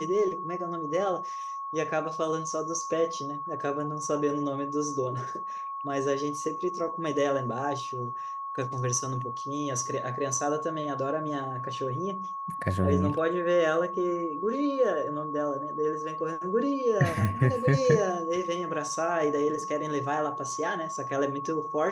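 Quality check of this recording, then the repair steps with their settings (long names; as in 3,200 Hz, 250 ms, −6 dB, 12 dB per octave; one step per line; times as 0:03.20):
whistle 1,100 Hz −33 dBFS
0:17.25: click −16 dBFS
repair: click removal
notch filter 1,100 Hz, Q 30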